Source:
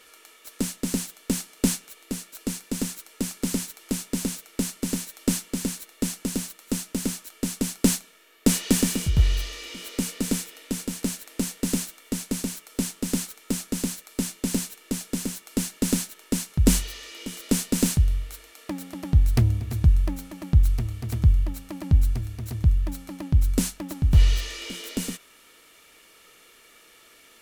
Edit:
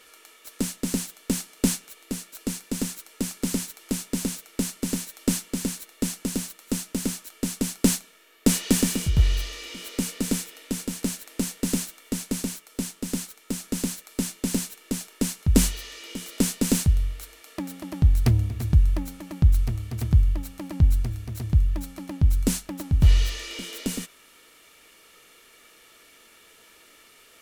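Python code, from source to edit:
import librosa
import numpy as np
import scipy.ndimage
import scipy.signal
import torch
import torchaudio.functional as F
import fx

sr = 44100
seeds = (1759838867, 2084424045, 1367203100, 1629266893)

y = fx.edit(x, sr, fx.clip_gain(start_s=12.57, length_s=1.07, db=-3.0),
    fx.cut(start_s=15.08, length_s=1.11), tone=tone)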